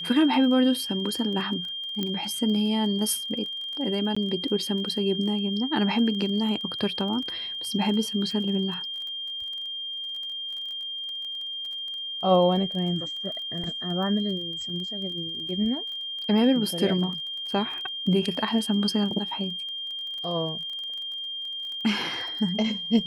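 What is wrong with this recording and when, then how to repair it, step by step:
surface crackle 23 per second −34 dBFS
whistle 3,200 Hz −31 dBFS
0:02.03: click −15 dBFS
0:04.15–0:04.17: drop-out 15 ms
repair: click removal
notch filter 3,200 Hz, Q 30
repair the gap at 0:04.15, 15 ms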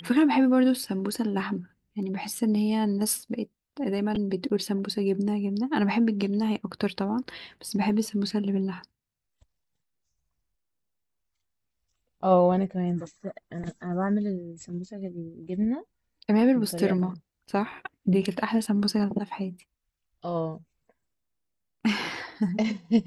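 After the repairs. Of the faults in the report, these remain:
0:02.03: click

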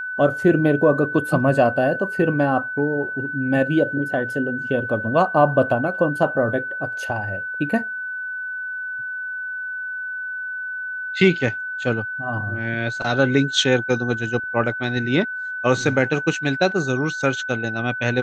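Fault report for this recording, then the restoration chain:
whistle 1,500 Hz −26 dBFS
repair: notch filter 1,500 Hz, Q 30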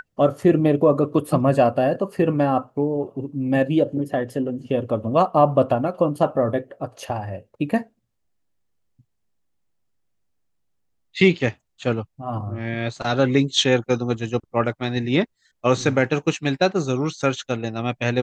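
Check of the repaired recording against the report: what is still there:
none of them is left

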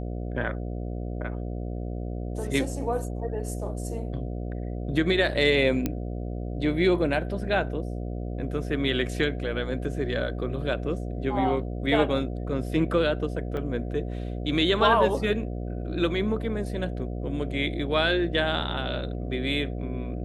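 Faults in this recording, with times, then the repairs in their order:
mains buzz 60 Hz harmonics 12 −32 dBFS
0:05.86: click −12 dBFS
0:13.57: drop-out 2.5 ms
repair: click removal
hum removal 60 Hz, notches 12
repair the gap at 0:13.57, 2.5 ms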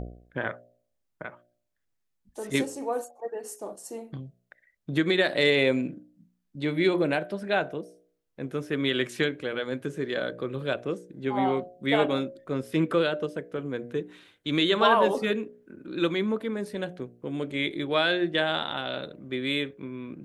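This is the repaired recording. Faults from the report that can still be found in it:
none of them is left

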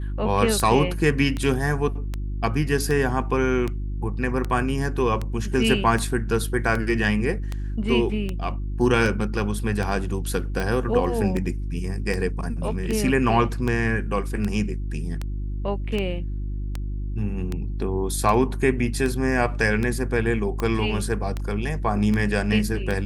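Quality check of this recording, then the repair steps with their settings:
mains hum 50 Hz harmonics 7 −28 dBFS
scratch tick 78 rpm −14 dBFS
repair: click removal
hum removal 50 Hz, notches 7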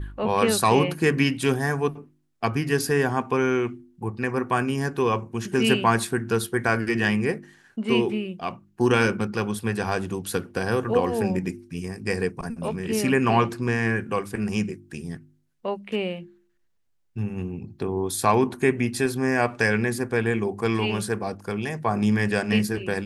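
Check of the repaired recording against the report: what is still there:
none of them is left

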